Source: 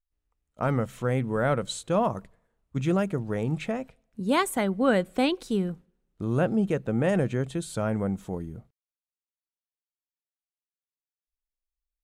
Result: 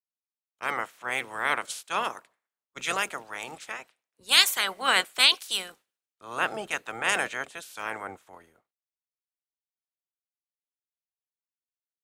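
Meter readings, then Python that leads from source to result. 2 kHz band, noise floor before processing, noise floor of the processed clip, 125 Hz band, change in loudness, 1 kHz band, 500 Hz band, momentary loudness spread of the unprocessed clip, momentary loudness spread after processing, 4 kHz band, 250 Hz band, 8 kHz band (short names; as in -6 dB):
+8.5 dB, under -85 dBFS, under -85 dBFS, -25.0 dB, +1.5 dB, +1.0 dB, -10.5 dB, 11 LU, 19 LU, +15.0 dB, -19.0 dB, +8.0 dB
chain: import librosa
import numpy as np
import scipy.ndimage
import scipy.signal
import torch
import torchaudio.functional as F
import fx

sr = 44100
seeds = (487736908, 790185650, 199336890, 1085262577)

y = fx.spec_clip(x, sr, under_db=25)
y = fx.highpass(y, sr, hz=1200.0, slope=6)
y = fx.band_widen(y, sr, depth_pct=100)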